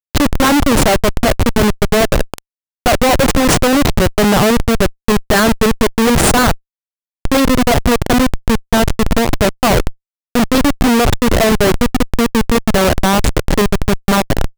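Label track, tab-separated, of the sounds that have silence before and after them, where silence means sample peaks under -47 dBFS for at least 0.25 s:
2.860000	6.590000	sound
7.250000	9.950000	sound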